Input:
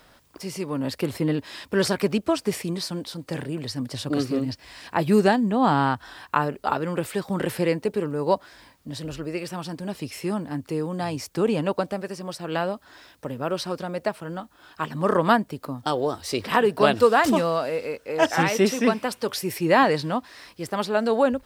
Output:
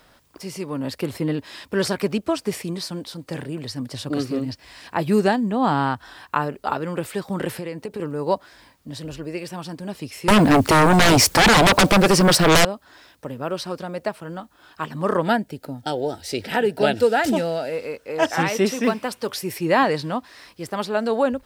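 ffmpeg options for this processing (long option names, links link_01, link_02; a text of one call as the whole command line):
ffmpeg -i in.wav -filter_complex "[0:a]asettb=1/sr,asplit=3[link_01][link_02][link_03];[link_01]atrim=end=7.574[link_04];[link_02]atrim=start=7.57:end=8,asetpts=PTS-STARTPTS,afade=type=in:duration=0.004:curve=qsin,afade=type=out:start_time=0.426:duration=0.004:curve=qsin,acompressor=threshold=-26dB:ratio=6:attack=3.2:release=140:knee=1:detection=peak[link_05];[link_03]atrim=start=7.996[link_06];[link_04][link_05]acrossfade=duration=0.004:curve1=hsin:curve2=qsin[link_07];[link_07][link_06]acrossfade=duration=0.004:curve1=qsin:curve2=hsin,asettb=1/sr,asplit=3[link_08][link_09][link_10];[link_08]atrim=end=9.084[link_11];[link_09]atrim=start=9.08:end=9.58,asetpts=PTS-STARTPTS,afade=type=in:duration=0.004:curve=qsin,afade=type=out:start_time=0.496:duration=0.004:curve=qsin,bandreject=frequency=1300:width=7.9[link_12];[link_10]atrim=start=9.576[link_13];[link_11][link_12]acrossfade=duration=0.004:curve1=hsin:curve2=qsin[link_14];[link_14][link_13]acrossfade=duration=0.004:curve1=qsin:curve2=hsin,asettb=1/sr,asplit=3[link_15][link_16][link_17];[link_15]atrim=end=10.284[link_18];[link_16]atrim=start=10.28:end=12.65,asetpts=PTS-STARTPTS,afade=type=in:duration=0.004:curve=qsin,afade=type=out:start_time=2.366:duration=0.004:curve=qsin,aeval=exprs='0.316*sin(PI/2*8.91*val(0)/0.316)':channel_layout=same[link_19];[link_17]atrim=start=12.646[link_20];[link_18][link_19]acrossfade=duration=0.004:curve1=hsin:curve2=qsin[link_21];[link_21][link_20]acrossfade=duration=0.004:curve1=qsin:curve2=hsin,asettb=1/sr,asplit=3[link_22][link_23][link_24];[link_22]atrim=end=15.224[link_25];[link_23]atrim=start=15.22:end=17.73,asetpts=PTS-STARTPTS,afade=type=in:duration=0.004:curve=qsin,afade=type=out:start_time=2.506:duration=0.004:curve=qsin,asuperstop=centerf=1100:order=4:qfactor=2.8[link_26];[link_24]atrim=start=17.726[link_27];[link_25][link_26]acrossfade=duration=0.004:curve1=hsin:curve2=qsin[link_28];[link_28][link_27]acrossfade=duration=0.004:curve1=qsin:curve2=hsin,asettb=1/sr,asplit=3[link_29][link_30][link_31];[link_29]atrim=end=18.834[link_32];[link_30]atrim=start=18.83:end=19.41,asetpts=PTS-STARTPTS,afade=type=in:duration=0.004:curve=qsin,afade=type=out:start_time=0.576:duration=0.004:curve=qsin,acrusher=bits=9:mode=log:mix=0:aa=0.000001[link_33];[link_31]atrim=start=19.406[link_34];[link_32][link_33]acrossfade=duration=0.004:curve1=hsin:curve2=qsin[link_35];[link_35][link_34]acrossfade=duration=0.004:curve1=qsin:curve2=hsin" out.wav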